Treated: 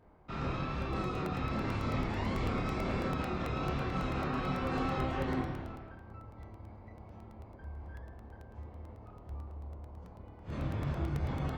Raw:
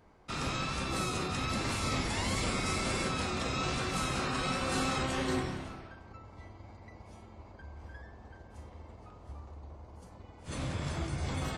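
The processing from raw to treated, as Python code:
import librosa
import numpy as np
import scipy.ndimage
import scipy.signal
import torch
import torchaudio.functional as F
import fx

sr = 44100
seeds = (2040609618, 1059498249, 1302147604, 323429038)

y = fx.spacing_loss(x, sr, db_at_10k=35)
y = fx.doubler(y, sr, ms=28.0, db=-3.0)
y = fx.buffer_crackle(y, sr, first_s=0.82, period_s=0.11, block=64, kind='repeat')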